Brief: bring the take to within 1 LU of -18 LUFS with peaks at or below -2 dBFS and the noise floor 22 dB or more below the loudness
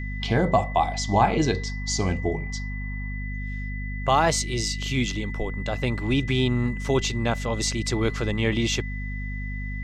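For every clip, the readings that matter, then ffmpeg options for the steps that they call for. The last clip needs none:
hum 50 Hz; harmonics up to 250 Hz; hum level -29 dBFS; steady tone 2000 Hz; tone level -37 dBFS; loudness -25.5 LUFS; peak -7.0 dBFS; loudness target -18.0 LUFS
-> -af "bandreject=f=50:t=h:w=6,bandreject=f=100:t=h:w=6,bandreject=f=150:t=h:w=6,bandreject=f=200:t=h:w=6,bandreject=f=250:t=h:w=6"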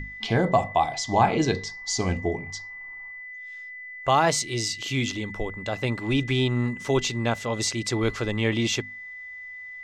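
hum none; steady tone 2000 Hz; tone level -37 dBFS
-> -af "bandreject=f=2k:w=30"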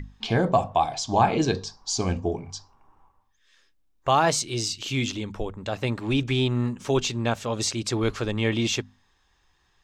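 steady tone none; loudness -25.5 LUFS; peak -7.5 dBFS; loudness target -18.0 LUFS
-> -af "volume=7.5dB,alimiter=limit=-2dB:level=0:latency=1"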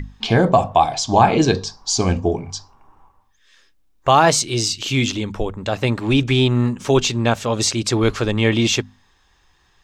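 loudness -18.0 LUFS; peak -2.0 dBFS; noise floor -59 dBFS

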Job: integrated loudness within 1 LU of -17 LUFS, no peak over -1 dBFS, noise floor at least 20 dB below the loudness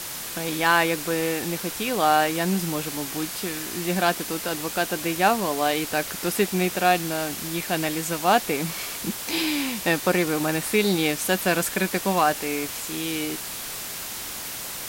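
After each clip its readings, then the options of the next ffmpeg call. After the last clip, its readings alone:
noise floor -34 dBFS; noise floor target -45 dBFS; loudness -24.5 LUFS; peak -7.0 dBFS; loudness target -17.0 LUFS
-> -af "afftdn=nr=11:nf=-34"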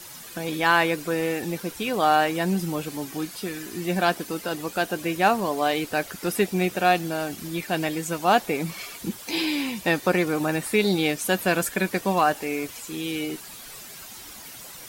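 noise floor -42 dBFS; noise floor target -45 dBFS
-> -af "afftdn=nr=6:nf=-42"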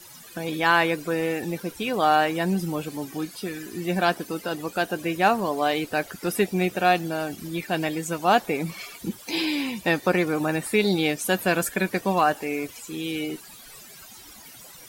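noise floor -46 dBFS; loudness -25.0 LUFS; peak -7.5 dBFS; loudness target -17.0 LUFS
-> -af "volume=8dB,alimiter=limit=-1dB:level=0:latency=1"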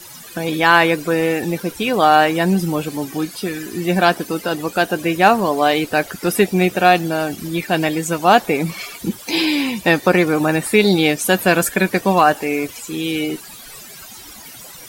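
loudness -17.0 LUFS; peak -1.0 dBFS; noise floor -38 dBFS

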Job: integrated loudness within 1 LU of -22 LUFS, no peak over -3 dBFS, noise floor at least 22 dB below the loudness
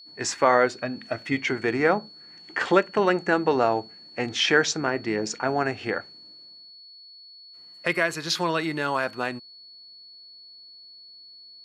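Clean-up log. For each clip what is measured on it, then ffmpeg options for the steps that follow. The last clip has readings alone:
steady tone 4400 Hz; tone level -45 dBFS; loudness -24.5 LUFS; peak -4.0 dBFS; loudness target -22.0 LUFS
-> -af "bandreject=f=4.4k:w=30"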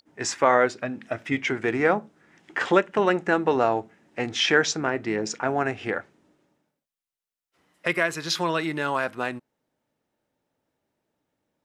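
steady tone none; loudness -24.5 LUFS; peak -4.0 dBFS; loudness target -22.0 LUFS
-> -af "volume=2.5dB,alimiter=limit=-3dB:level=0:latency=1"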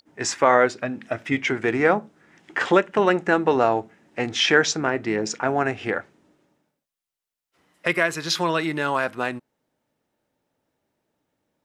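loudness -22.5 LUFS; peak -3.0 dBFS; noise floor -88 dBFS

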